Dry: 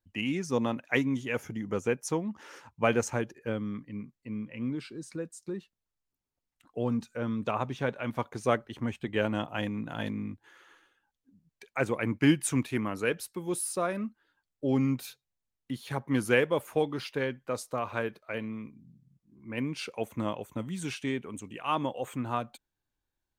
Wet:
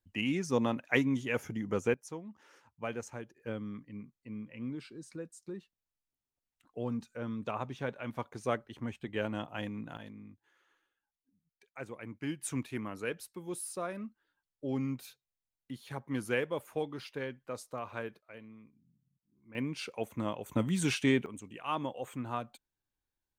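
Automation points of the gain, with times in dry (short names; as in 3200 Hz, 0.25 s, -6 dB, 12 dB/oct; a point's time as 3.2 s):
-1 dB
from 1.94 s -12.5 dB
from 3.4 s -6 dB
from 9.97 s -14.5 dB
from 12.42 s -7.5 dB
from 18.21 s -15 dB
from 19.55 s -3 dB
from 20.46 s +5 dB
from 21.26 s -5 dB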